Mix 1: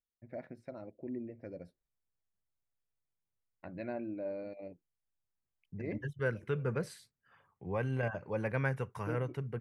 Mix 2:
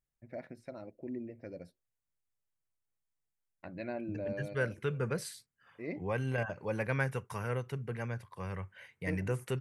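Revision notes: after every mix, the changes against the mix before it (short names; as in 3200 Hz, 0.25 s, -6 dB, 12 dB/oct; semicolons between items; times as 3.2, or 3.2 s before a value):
second voice: entry -1.65 s; master: add high shelf 3100 Hz +10 dB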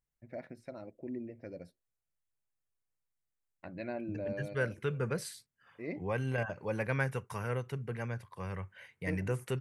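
none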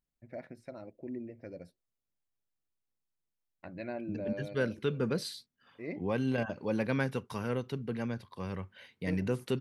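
second voice: add graphic EQ 125/250/2000/4000/8000 Hz -4/+11/-5/+12/-6 dB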